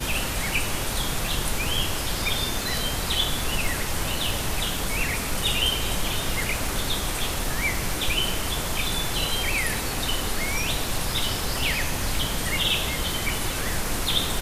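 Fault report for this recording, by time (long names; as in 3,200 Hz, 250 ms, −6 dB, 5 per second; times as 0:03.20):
surface crackle 12 per second −28 dBFS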